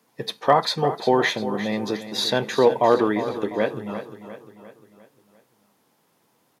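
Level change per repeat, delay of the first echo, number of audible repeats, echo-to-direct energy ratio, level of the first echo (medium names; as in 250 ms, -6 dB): -6.0 dB, 350 ms, 4, -11.0 dB, -12.0 dB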